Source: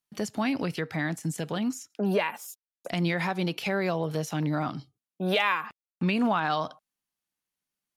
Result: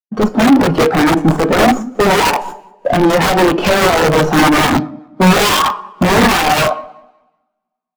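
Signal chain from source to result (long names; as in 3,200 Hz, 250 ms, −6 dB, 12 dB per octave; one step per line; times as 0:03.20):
stylus tracing distortion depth 0.15 ms
low-pass filter 3,000 Hz 6 dB per octave
flat-topped bell 570 Hz +10 dB 2.9 octaves
in parallel at −1 dB: brickwall limiter −14.5 dBFS, peak gain reduction 8 dB
on the sum: leveller curve on the samples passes 5
automatic gain control gain up to 5 dB
on a send: repeating echo 189 ms, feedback 41%, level −16.5 dB
on the sum: coupled-rooms reverb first 0.58 s, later 2.8 s, from −26 dB, DRR 5.5 dB
wrap-around overflow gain 0.5 dB
every bin expanded away from the loudest bin 1.5 to 1
level −1 dB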